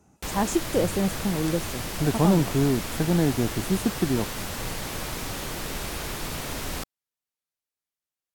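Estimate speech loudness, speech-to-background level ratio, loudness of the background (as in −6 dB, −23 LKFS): −25.5 LKFS, 6.5 dB, −32.0 LKFS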